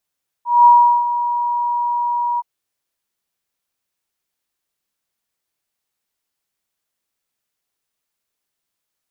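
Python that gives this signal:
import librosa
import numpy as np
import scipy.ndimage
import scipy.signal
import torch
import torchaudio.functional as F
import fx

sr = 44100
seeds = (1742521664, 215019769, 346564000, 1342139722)

y = fx.adsr_tone(sr, wave='sine', hz=959.0, attack_ms=205.0, decay_ms=384.0, sustain_db=-12.0, held_s=1.94, release_ms=32.0, level_db=-4.5)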